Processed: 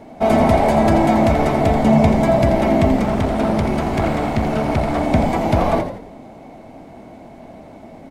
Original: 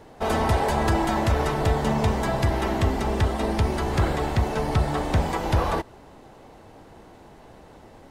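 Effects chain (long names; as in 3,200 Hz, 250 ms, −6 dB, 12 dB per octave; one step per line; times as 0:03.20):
hollow resonant body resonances 240/650/2,200 Hz, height 14 dB, ringing for 25 ms
0:02.96–0:05.01: asymmetric clip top −21 dBFS
echo with shifted repeats 84 ms, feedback 42%, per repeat −66 Hz, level −8.5 dB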